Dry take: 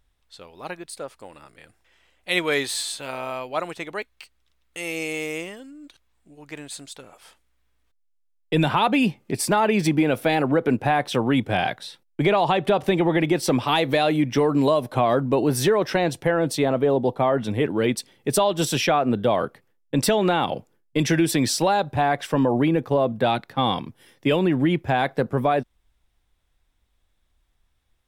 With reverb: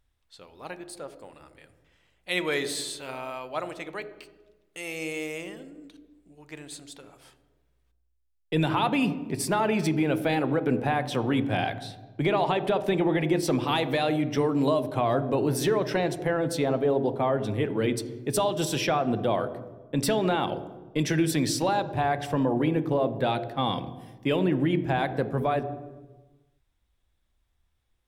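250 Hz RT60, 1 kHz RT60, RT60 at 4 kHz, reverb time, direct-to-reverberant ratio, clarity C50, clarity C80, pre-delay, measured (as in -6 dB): 1.5 s, 1.2 s, 0.90 s, 1.3 s, 11.5 dB, 13.0 dB, 15.0 dB, 3 ms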